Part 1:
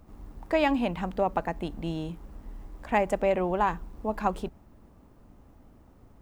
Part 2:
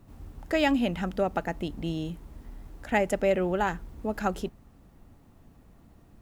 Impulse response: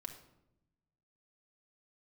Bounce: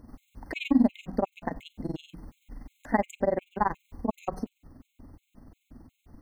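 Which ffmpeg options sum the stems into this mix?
-filter_complex "[0:a]equalizer=f=250:w=4.2:g=12,aeval=exprs='val(0)+0.00447*(sin(2*PI*60*n/s)+sin(2*PI*2*60*n/s)/2+sin(2*PI*3*60*n/s)/3+sin(2*PI*4*60*n/s)/4+sin(2*PI*5*60*n/s)/5)':c=same,tremolo=f=21:d=1,volume=0.5dB,asplit=3[a][b][c];[b]volume=-8dB[d];[1:a]acompressor=threshold=-30dB:ratio=6,volume=-1,volume=-1.5dB[e];[c]apad=whole_len=274055[f];[e][f]sidechaincompress=threshold=-39dB:ratio=8:attack=16:release=150[g];[2:a]atrim=start_sample=2205[h];[d][h]afir=irnorm=-1:irlink=0[i];[a][g][i]amix=inputs=3:normalize=0,bandreject=f=60:t=h:w=6,bandreject=f=120:t=h:w=6,bandreject=f=180:t=h:w=6,afftfilt=real='re*gt(sin(2*PI*2.8*pts/sr)*(1-2*mod(floor(b*sr/1024/2100),2)),0)':imag='im*gt(sin(2*PI*2.8*pts/sr)*(1-2*mod(floor(b*sr/1024/2100),2)),0)':win_size=1024:overlap=0.75"

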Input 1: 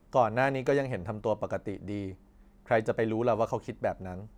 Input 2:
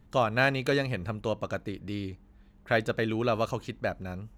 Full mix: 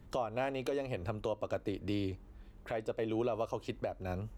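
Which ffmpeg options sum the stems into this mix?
-filter_complex "[0:a]bandreject=f=860:w=12,volume=-6.5dB,asplit=2[a][b];[1:a]acrossover=split=190[c][d];[d]acompressor=threshold=-28dB:ratio=6[e];[c][e]amix=inputs=2:normalize=0,volume=1.5dB[f];[b]apad=whole_len=193029[g];[f][g]sidechaincompress=threshold=-40dB:ratio=8:attack=44:release=443[h];[a][h]amix=inputs=2:normalize=0,alimiter=limit=-24dB:level=0:latency=1:release=257"

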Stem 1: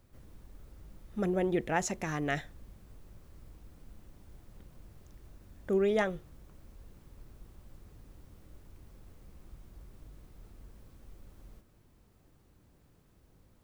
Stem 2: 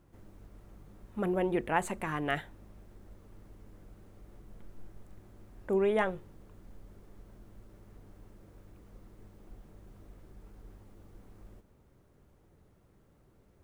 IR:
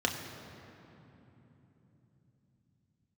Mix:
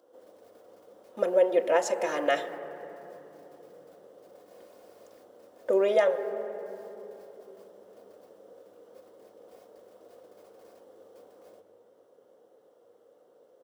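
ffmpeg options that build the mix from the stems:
-filter_complex "[0:a]equalizer=f=4.9k:t=o:w=0.31:g=4.5,aecho=1:1:2.8:0.56,volume=1.5dB[a];[1:a]volume=-1,adelay=2.6,volume=-3dB,asplit=3[b][c][d];[c]volume=-9dB[e];[d]apad=whole_len=601504[f];[a][f]sidechaingate=range=-33dB:threshold=-53dB:ratio=16:detection=peak[g];[2:a]atrim=start_sample=2205[h];[e][h]afir=irnorm=-1:irlink=0[i];[g][b][i]amix=inputs=3:normalize=0,highpass=f=510:t=q:w=4.9,alimiter=limit=-12.5dB:level=0:latency=1:release=381"

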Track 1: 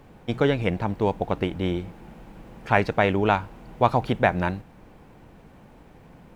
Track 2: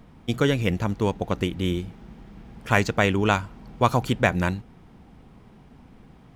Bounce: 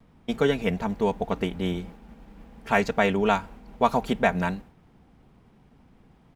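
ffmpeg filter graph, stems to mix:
-filter_complex "[0:a]agate=range=-33dB:threshold=-38dB:ratio=3:detection=peak,volume=-3dB[a];[1:a]adelay=4.1,volume=-7dB[b];[a][b]amix=inputs=2:normalize=0"

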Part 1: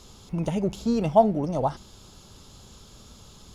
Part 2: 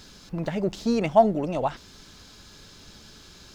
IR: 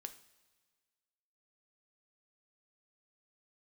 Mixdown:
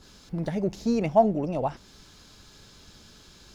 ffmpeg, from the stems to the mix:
-filter_complex "[0:a]volume=-10.5dB[a];[1:a]adynamicequalizer=threshold=0.0112:dfrequency=2100:dqfactor=0.7:tfrequency=2100:tqfactor=0.7:attack=5:release=100:ratio=0.375:range=2.5:mode=cutabove:tftype=highshelf,volume=-4dB[b];[a][b]amix=inputs=2:normalize=0"

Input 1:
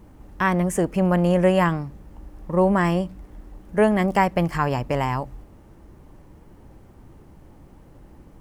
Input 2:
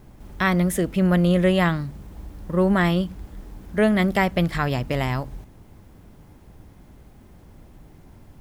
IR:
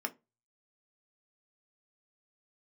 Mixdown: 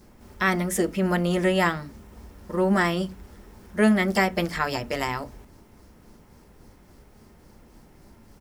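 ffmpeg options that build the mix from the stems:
-filter_complex "[0:a]highshelf=f=3.4k:t=q:w=3:g=11,tremolo=f=3.6:d=0.7,volume=-7dB[a];[1:a]volume=-1,adelay=6.6,volume=-5.5dB,asplit=2[b][c];[c]volume=-3dB[d];[2:a]atrim=start_sample=2205[e];[d][e]afir=irnorm=-1:irlink=0[f];[a][b][f]amix=inputs=3:normalize=0"

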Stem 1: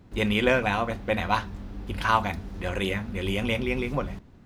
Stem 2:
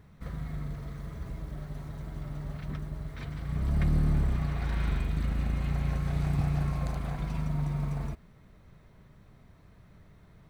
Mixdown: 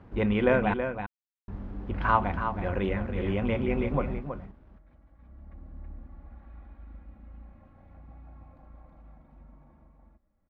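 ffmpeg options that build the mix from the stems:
-filter_complex "[0:a]acrusher=bits=8:mix=0:aa=0.000001,volume=0dB,asplit=3[a][b][c];[a]atrim=end=0.74,asetpts=PTS-STARTPTS,afade=t=out:st=0.736:d=0.004:c=hsin[d];[b]atrim=start=0.74:end=1.48,asetpts=PTS-STARTPTS,volume=0[e];[c]atrim=start=1.48,asetpts=PTS-STARTPTS,afade=t=in:d=0.004:c=hsin[f];[d][e][f]concat=n=3:v=0:a=1,asplit=3[g][h][i];[h]volume=-8dB[j];[1:a]equalizer=f=710:t=o:w=0.33:g=7,aecho=1:1:3.6:0.78,adelay=1700,volume=-3dB,asplit=2[k][l];[l]volume=-21.5dB[m];[i]apad=whole_len=537995[n];[k][n]sidechaingate=range=-20dB:threshold=-37dB:ratio=16:detection=peak[o];[j][m]amix=inputs=2:normalize=0,aecho=0:1:324:1[p];[g][o][p]amix=inputs=3:normalize=0,lowpass=1.5k"

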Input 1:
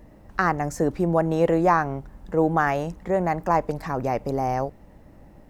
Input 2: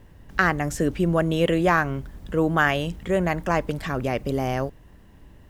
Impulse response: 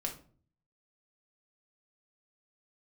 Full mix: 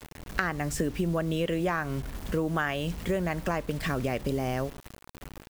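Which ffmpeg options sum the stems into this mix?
-filter_complex "[0:a]highpass=760,acompressor=threshold=-33dB:ratio=6,volume=-7.5dB,asplit=2[a][b];[b]volume=-14.5dB[c];[1:a]volume=1dB,asplit=2[d][e];[e]volume=-21.5dB[f];[2:a]atrim=start_sample=2205[g];[c][f]amix=inputs=2:normalize=0[h];[h][g]afir=irnorm=-1:irlink=0[i];[a][d][i]amix=inputs=3:normalize=0,acrusher=bits=6:mix=0:aa=0.000001,acompressor=threshold=-25dB:ratio=6"

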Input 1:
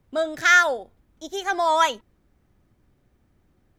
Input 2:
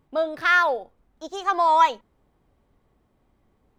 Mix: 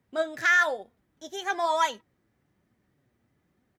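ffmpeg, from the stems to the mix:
-filter_complex "[0:a]highpass=93,flanger=delay=3.9:depth=5.3:regen=54:speed=1.1:shape=triangular,volume=-1dB[a];[1:a]highpass=f=1.8k:t=q:w=6,asplit=2[b][c];[c]adelay=2.7,afreqshift=1[d];[b][d]amix=inputs=2:normalize=1,volume=-11.5dB[e];[a][e]amix=inputs=2:normalize=0,alimiter=limit=-13dB:level=0:latency=1:release=19"

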